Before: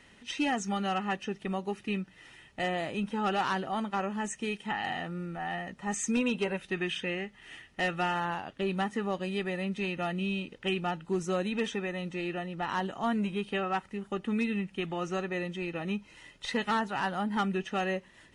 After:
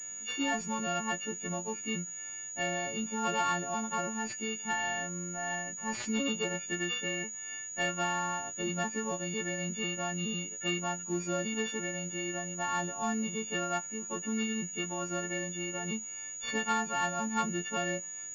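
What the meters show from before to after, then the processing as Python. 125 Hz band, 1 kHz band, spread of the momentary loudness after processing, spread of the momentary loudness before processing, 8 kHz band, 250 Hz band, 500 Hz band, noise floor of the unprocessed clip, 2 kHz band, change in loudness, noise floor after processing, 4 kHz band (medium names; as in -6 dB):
-3.0 dB, -2.0 dB, 5 LU, 6 LU, +12.0 dB, -3.5 dB, -3.5 dB, -59 dBFS, +0.5 dB, -1.0 dB, -42 dBFS, +0.5 dB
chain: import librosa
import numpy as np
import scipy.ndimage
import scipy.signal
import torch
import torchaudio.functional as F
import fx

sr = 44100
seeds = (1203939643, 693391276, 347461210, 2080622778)

y = fx.freq_snap(x, sr, grid_st=4)
y = fx.pwm(y, sr, carrier_hz=6800.0)
y = y * librosa.db_to_amplitude(-3.5)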